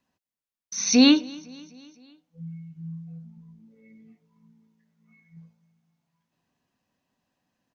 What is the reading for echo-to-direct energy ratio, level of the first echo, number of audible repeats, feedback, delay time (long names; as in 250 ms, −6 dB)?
−22.5 dB, −24.0 dB, 3, 58%, 254 ms